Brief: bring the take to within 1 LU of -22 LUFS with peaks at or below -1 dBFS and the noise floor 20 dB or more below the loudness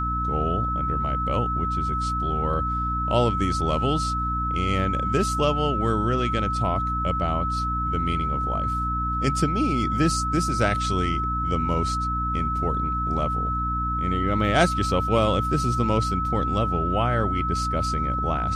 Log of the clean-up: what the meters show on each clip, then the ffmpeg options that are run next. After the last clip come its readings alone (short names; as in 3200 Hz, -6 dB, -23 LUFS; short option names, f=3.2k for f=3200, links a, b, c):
hum 60 Hz; harmonics up to 300 Hz; hum level -26 dBFS; steady tone 1300 Hz; tone level -25 dBFS; loudness -24.0 LUFS; peak -4.0 dBFS; loudness target -22.0 LUFS
-> -af "bandreject=f=60:t=h:w=4,bandreject=f=120:t=h:w=4,bandreject=f=180:t=h:w=4,bandreject=f=240:t=h:w=4,bandreject=f=300:t=h:w=4"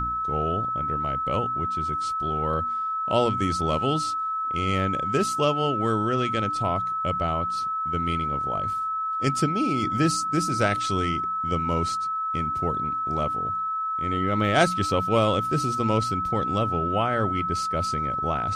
hum none; steady tone 1300 Hz; tone level -25 dBFS
-> -af "bandreject=f=1.3k:w=30"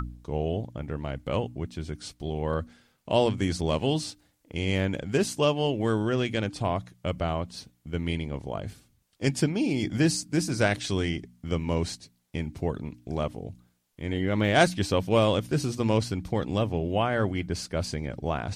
steady tone none; loudness -28.5 LUFS; peak -5.5 dBFS; loudness target -22.0 LUFS
-> -af "volume=6.5dB,alimiter=limit=-1dB:level=0:latency=1"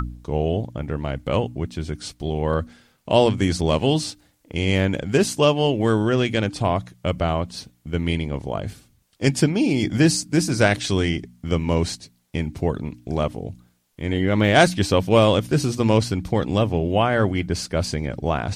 loudness -22.0 LUFS; peak -1.0 dBFS; noise floor -62 dBFS